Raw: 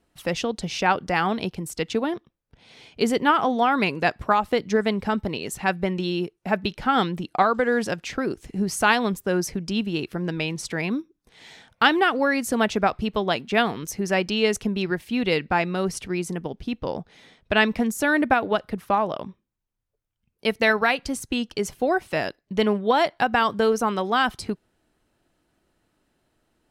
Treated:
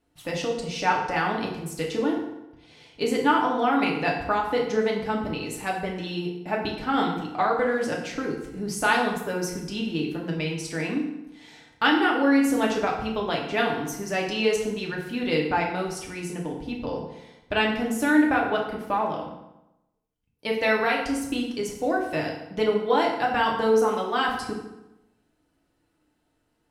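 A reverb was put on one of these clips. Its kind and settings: FDN reverb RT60 0.92 s, low-frequency decay 1.05×, high-frequency decay 0.75×, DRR -2 dB; trim -6.5 dB

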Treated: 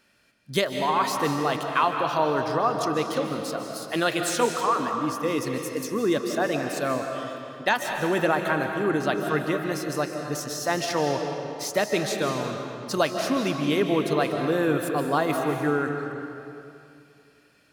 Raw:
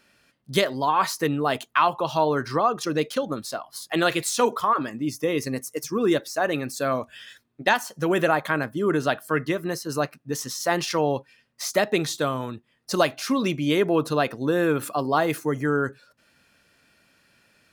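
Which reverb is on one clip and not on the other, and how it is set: algorithmic reverb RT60 2.6 s, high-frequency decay 0.8×, pre-delay 110 ms, DRR 3.5 dB; trim -2.5 dB

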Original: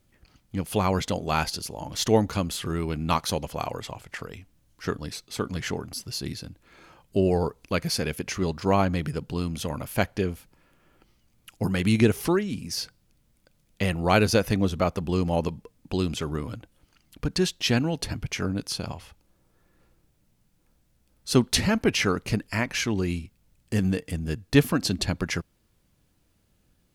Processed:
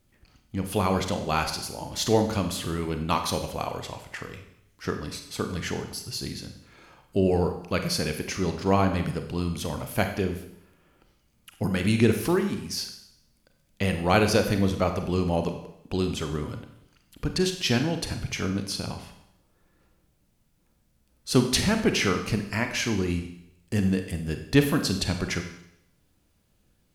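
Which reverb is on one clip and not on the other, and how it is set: Schroeder reverb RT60 0.76 s, combs from 31 ms, DRR 6 dB; trim -1 dB

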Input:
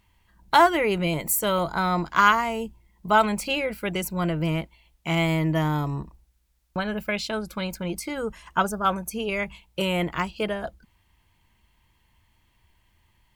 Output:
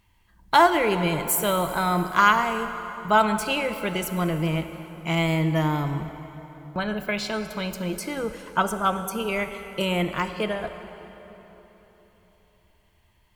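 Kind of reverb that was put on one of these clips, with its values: plate-style reverb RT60 3.8 s, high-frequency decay 0.7×, DRR 8 dB

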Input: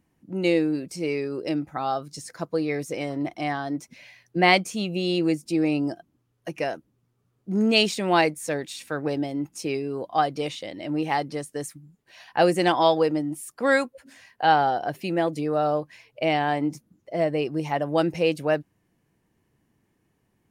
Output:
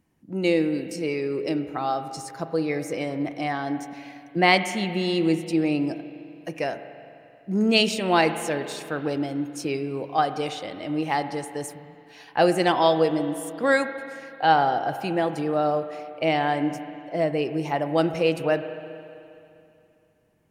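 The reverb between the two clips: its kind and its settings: spring tank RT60 2.7 s, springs 31/43 ms, chirp 80 ms, DRR 9.5 dB

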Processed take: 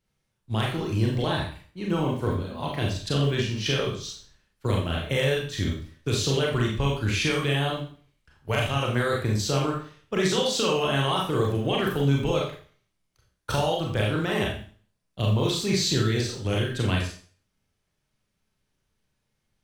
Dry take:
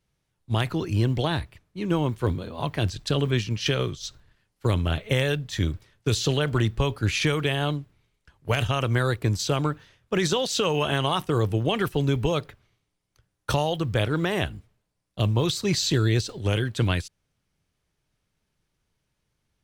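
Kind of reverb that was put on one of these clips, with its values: Schroeder reverb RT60 0.44 s, combs from 29 ms, DRR -2 dB; trim -4 dB

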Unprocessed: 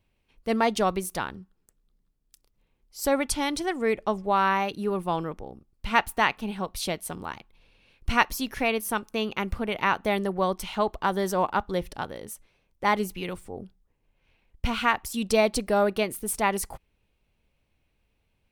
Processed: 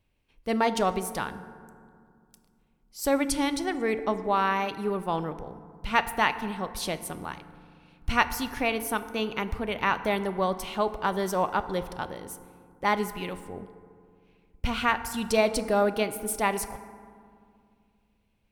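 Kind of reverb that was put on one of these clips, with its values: FDN reverb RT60 2.2 s, low-frequency decay 1.5×, high-frequency decay 0.4×, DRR 11 dB; trim -1.5 dB

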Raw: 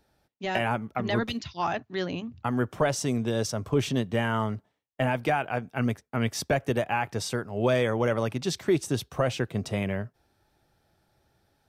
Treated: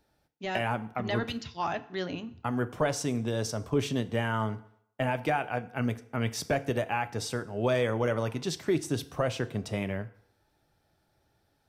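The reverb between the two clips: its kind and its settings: FDN reverb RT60 0.69 s, low-frequency decay 0.8×, high-frequency decay 0.8×, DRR 12 dB; trim -3 dB

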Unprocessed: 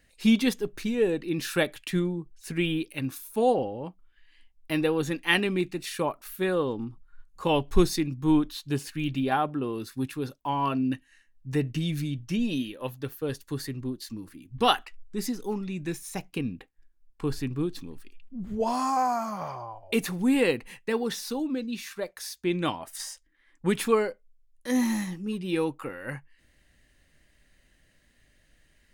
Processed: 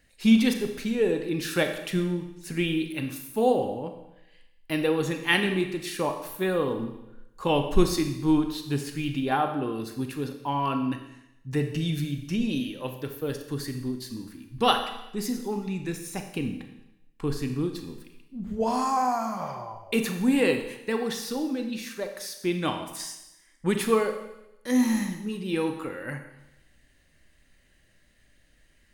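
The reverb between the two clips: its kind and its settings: Schroeder reverb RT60 0.91 s, combs from 28 ms, DRR 6 dB

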